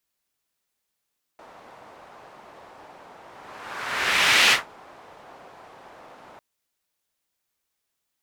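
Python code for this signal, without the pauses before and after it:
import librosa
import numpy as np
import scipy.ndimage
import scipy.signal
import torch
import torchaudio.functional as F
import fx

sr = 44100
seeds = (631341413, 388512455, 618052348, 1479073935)

y = fx.whoosh(sr, seeds[0], length_s=5.0, peak_s=3.12, rise_s=1.35, fall_s=0.17, ends_hz=810.0, peak_hz=2600.0, q=1.4, swell_db=30.5)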